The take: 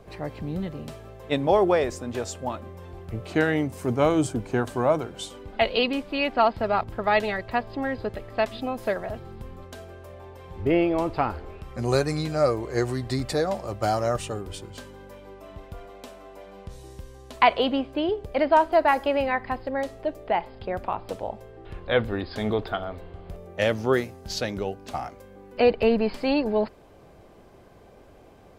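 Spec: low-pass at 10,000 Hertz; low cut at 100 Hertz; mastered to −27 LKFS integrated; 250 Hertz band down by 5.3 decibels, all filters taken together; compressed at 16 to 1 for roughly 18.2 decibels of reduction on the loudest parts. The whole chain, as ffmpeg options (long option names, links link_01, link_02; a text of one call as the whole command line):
ffmpeg -i in.wav -af "highpass=100,lowpass=10000,equalizer=frequency=250:width_type=o:gain=-7,acompressor=threshold=-32dB:ratio=16,volume=11.5dB" out.wav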